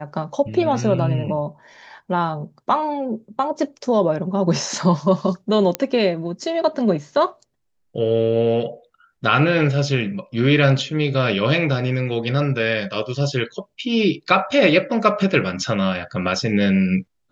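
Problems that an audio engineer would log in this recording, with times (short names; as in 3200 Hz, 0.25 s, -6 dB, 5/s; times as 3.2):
5.75 pop -5 dBFS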